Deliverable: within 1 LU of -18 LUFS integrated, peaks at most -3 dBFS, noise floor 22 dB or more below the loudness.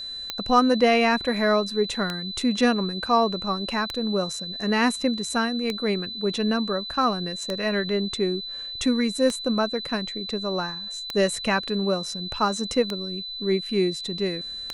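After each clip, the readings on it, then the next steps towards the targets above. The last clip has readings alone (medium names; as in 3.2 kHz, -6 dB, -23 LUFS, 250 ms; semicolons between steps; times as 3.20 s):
clicks found 9; steady tone 4 kHz; tone level -32 dBFS; loudness -24.5 LUFS; peak level -7.0 dBFS; loudness target -18.0 LUFS
-> de-click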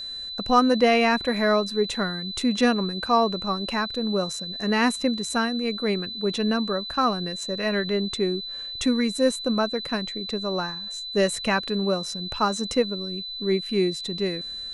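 clicks found 0; steady tone 4 kHz; tone level -32 dBFS
-> band-stop 4 kHz, Q 30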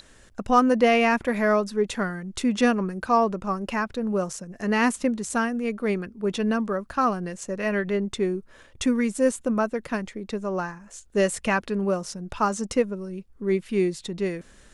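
steady tone not found; loudness -25.0 LUFS; peak level -7.5 dBFS; loudness target -18.0 LUFS
-> trim +7 dB; peak limiter -3 dBFS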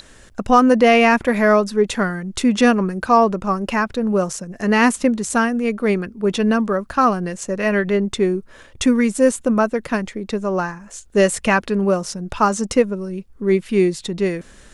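loudness -18.5 LUFS; peak level -3.0 dBFS; noise floor -46 dBFS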